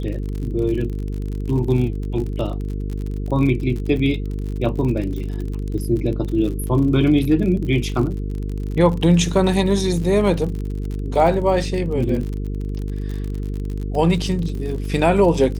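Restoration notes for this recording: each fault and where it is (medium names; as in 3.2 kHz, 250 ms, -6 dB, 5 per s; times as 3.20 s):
buzz 50 Hz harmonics 9 -25 dBFS
crackle 49 per s -27 dBFS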